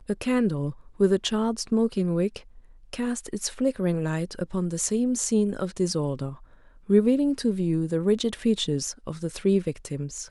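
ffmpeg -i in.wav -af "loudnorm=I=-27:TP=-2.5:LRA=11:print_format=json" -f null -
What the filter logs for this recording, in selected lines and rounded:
"input_i" : "-26.0",
"input_tp" : "-8.3",
"input_lra" : "1.5",
"input_thresh" : "-36.3",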